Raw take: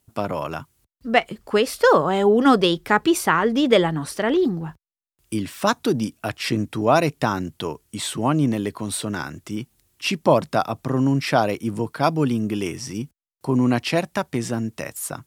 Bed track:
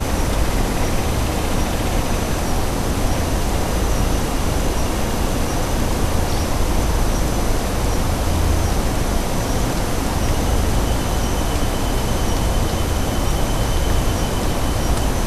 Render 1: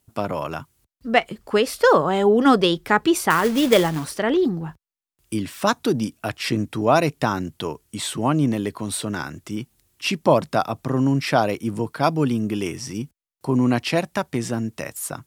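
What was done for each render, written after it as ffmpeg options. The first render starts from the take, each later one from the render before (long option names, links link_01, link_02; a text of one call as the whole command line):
ffmpeg -i in.wav -filter_complex "[0:a]asettb=1/sr,asplit=3[link_01][link_02][link_03];[link_01]atrim=end=3.304[link_04];[link_02]atrim=start=3.3:end=4.14,asetpts=PTS-STARTPTS,afade=type=in:duration=0.004:curve=qsin,afade=type=out:start_time=0.836:duration=0.004:curve=qsin,acrusher=bits=3:mode=log:mix=0:aa=0.000001[link_05];[link_03]atrim=start=4.136[link_06];[link_04][link_05]acrossfade=duration=0.004:curve1=hsin:curve2=qsin[link_07];[link_07][link_06]acrossfade=duration=0.004:curve1=qsin:curve2=hsin" out.wav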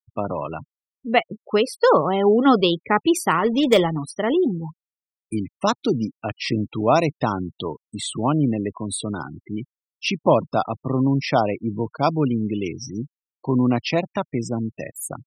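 ffmpeg -i in.wav -af "equalizer=frequency=1600:width_type=o:width=0.23:gain=-9.5,afftfilt=real='re*gte(hypot(re,im),0.0398)':imag='im*gte(hypot(re,im),0.0398)':win_size=1024:overlap=0.75" out.wav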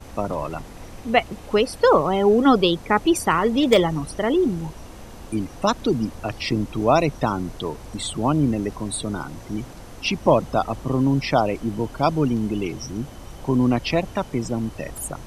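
ffmpeg -i in.wav -i bed.wav -filter_complex "[1:a]volume=-20dB[link_01];[0:a][link_01]amix=inputs=2:normalize=0" out.wav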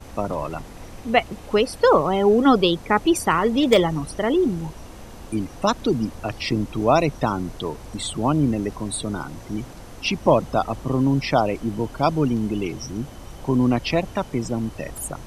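ffmpeg -i in.wav -af anull out.wav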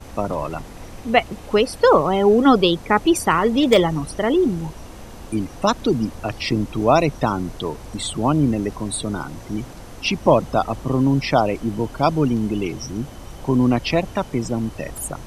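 ffmpeg -i in.wav -af "volume=2dB,alimiter=limit=-1dB:level=0:latency=1" out.wav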